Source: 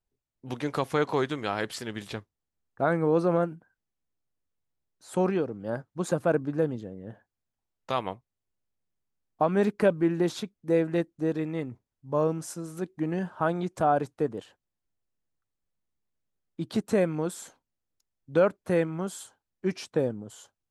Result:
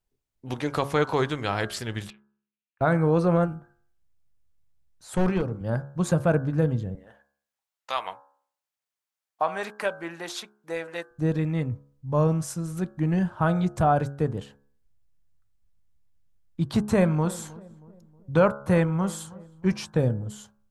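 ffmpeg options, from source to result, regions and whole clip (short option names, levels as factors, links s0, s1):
-filter_complex "[0:a]asettb=1/sr,asplit=3[s0][s1][s2];[s0]atrim=end=2.104[s3];[s1]atrim=start=2.1:end=2.81,asetpts=PTS-STARTPTS,afade=t=in:d=0.004:c=qsin,afade=t=out:st=0.706:d=0.004:c=qsin,acompressor=threshold=0.00126:ratio=2:attack=3.2:release=140:knee=1:detection=peak,bandpass=f=2600:t=q:w=4.4[s4];[s2]atrim=start=2.806[s5];[s3][s4]acrossfade=d=0.004:c1=hsin:c2=qsin[s6];[s6][s5]acrossfade=d=0.004:c1=qsin:c2=hsin,asettb=1/sr,asplit=3[s7][s8][s9];[s7]atrim=end=3.464[s10];[s8]atrim=start=3.46:end=5.61,asetpts=PTS-STARTPTS,afade=t=in:d=0.004:c=qsin,afade=t=out:st=2.146:d=0.004:c=qsin,bandreject=f=50:t=h:w=6,bandreject=f=100:t=h:w=6,bandreject=f=150:t=h:w=6,bandreject=f=200:t=h:w=6,bandreject=f=250:t=h:w=6,bandreject=f=300:t=h:w=6,bandreject=f=350:t=h:w=6,bandreject=f=400:t=h:w=6,volume=11.2,asoftclip=hard,volume=0.0891[s11];[s9]atrim=start=5.606[s12];[s10][s11]acrossfade=d=0.004:c1=hsin:c2=qsin[s13];[s13][s12]acrossfade=d=0.004:c1=qsin:c2=hsin,asettb=1/sr,asplit=3[s14][s15][s16];[s14]atrim=end=6.954[s17];[s15]atrim=start=6.95:end=11.1,asetpts=PTS-STARTPTS,afade=t=in:d=0.004:c=qsin,afade=t=out:st=4.146:d=0.004:c=qsin,highpass=740,aphaser=in_gain=1:out_gain=1:delay=3.9:decay=0.2:speed=1.6:type=sinusoidal[s18];[s16]atrim=start=11.096[s19];[s17][s18]acrossfade=d=0.004:c1=hsin:c2=qsin[s20];[s20][s19]acrossfade=d=0.004:c1=qsin:c2=hsin,asettb=1/sr,asplit=3[s21][s22][s23];[s21]atrim=end=16.624[s24];[s22]atrim=start=16.62:end=19.93,asetpts=PTS-STARTPTS,afade=t=in:d=0.004:c=qsin,afade=t=out:st=3.306:d=0.004:c=qsin,equalizer=f=990:w=2.3:g=7,asplit=2[s25][s26];[s26]adelay=316,lowpass=f=1100:p=1,volume=0.106,asplit=2[s27][s28];[s28]adelay=316,lowpass=f=1100:p=1,volume=0.48,asplit=2[s29][s30];[s30]adelay=316,lowpass=f=1100:p=1,volume=0.48,asplit=2[s31][s32];[s32]adelay=316,lowpass=f=1100:p=1,volume=0.48[s33];[s25][s27][s29][s31][s33]amix=inputs=5:normalize=0,atrim=end_sample=145971[s34];[s23]atrim=start=19.926[s35];[s24][s34]acrossfade=d=0.004:c1=hsin:c2=qsin[s36];[s36][s35]acrossfade=d=0.004:c1=qsin:c2=hsin,bandreject=f=70.15:t=h:w=4,bandreject=f=140.3:t=h:w=4,bandreject=f=210.45:t=h:w=4,bandreject=f=280.6:t=h:w=4,bandreject=f=350.75:t=h:w=4,bandreject=f=420.9:t=h:w=4,bandreject=f=491.05:t=h:w=4,bandreject=f=561.2:t=h:w=4,bandreject=f=631.35:t=h:w=4,bandreject=f=701.5:t=h:w=4,bandreject=f=771.65:t=h:w=4,bandreject=f=841.8:t=h:w=4,bandreject=f=911.95:t=h:w=4,bandreject=f=982.1:t=h:w=4,bandreject=f=1052.25:t=h:w=4,bandreject=f=1122.4:t=h:w=4,bandreject=f=1192.55:t=h:w=4,bandreject=f=1262.7:t=h:w=4,bandreject=f=1332.85:t=h:w=4,bandreject=f=1403:t=h:w=4,bandreject=f=1473.15:t=h:w=4,bandreject=f=1543.3:t=h:w=4,bandreject=f=1613.45:t=h:w=4,bandreject=f=1683.6:t=h:w=4,asubboost=boost=7:cutoff=120,volume=1.5"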